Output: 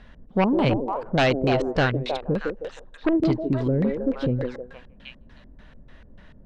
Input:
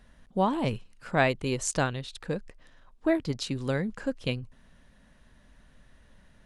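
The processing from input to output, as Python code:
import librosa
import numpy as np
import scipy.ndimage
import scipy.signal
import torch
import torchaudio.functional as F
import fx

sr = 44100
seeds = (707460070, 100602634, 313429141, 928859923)

y = fx.echo_stepped(x, sr, ms=157, hz=380.0, octaves=0.7, feedback_pct=70, wet_db=-3.5)
y = fx.fold_sine(y, sr, drive_db=9, ceiling_db=-10.5)
y = fx.filter_lfo_lowpass(y, sr, shape='square', hz=3.4, low_hz=410.0, high_hz=3500.0, q=0.94)
y = F.gain(torch.from_numpy(y), -4.0).numpy()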